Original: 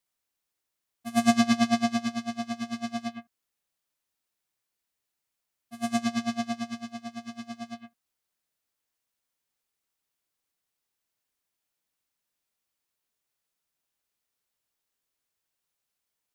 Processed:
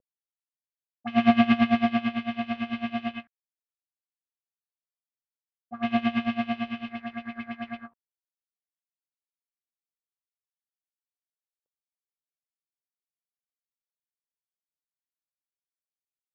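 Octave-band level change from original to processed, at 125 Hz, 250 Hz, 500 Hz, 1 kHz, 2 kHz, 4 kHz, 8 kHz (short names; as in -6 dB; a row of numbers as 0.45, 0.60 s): +2.5 dB, +2.5 dB, +2.5 dB, +2.5 dB, +3.5 dB, -1.0 dB, under -25 dB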